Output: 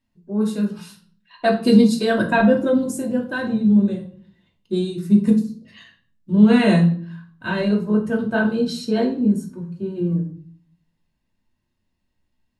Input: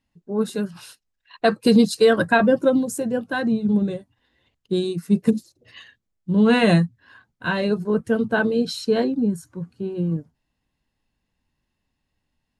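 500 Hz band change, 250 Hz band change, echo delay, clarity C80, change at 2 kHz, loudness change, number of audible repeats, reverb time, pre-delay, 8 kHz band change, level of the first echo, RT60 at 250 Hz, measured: -1.5 dB, +3.5 dB, no echo, 14.5 dB, -1.0 dB, +2.0 dB, no echo, 0.50 s, 3 ms, no reading, no echo, 0.75 s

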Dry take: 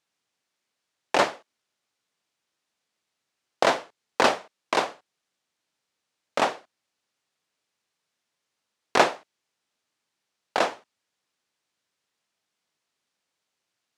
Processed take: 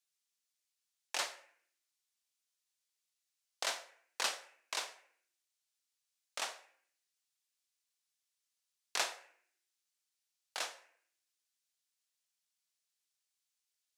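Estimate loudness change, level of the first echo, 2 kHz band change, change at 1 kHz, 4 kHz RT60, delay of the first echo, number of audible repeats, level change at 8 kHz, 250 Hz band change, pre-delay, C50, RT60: -14.0 dB, no echo, -13.5 dB, -19.5 dB, 0.50 s, no echo, no echo, -3.0 dB, -30.0 dB, 17 ms, 14.0 dB, 0.60 s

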